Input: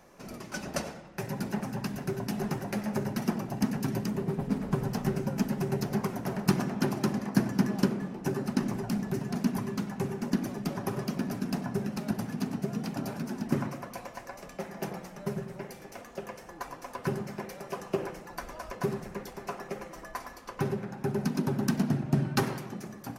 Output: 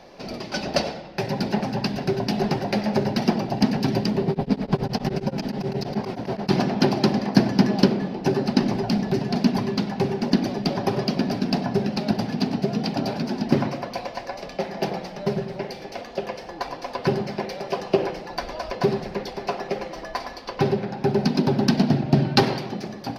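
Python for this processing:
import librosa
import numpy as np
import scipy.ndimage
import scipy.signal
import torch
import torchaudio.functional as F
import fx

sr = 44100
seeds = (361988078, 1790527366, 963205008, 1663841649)

y = fx.curve_eq(x, sr, hz=(160.0, 770.0, 1200.0, 4700.0, 7200.0), db=(0, 6, -3, 10, -12))
y = fx.tremolo_abs(y, sr, hz=9.4, at=(4.3, 6.53))
y = y * 10.0 ** (7.0 / 20.0)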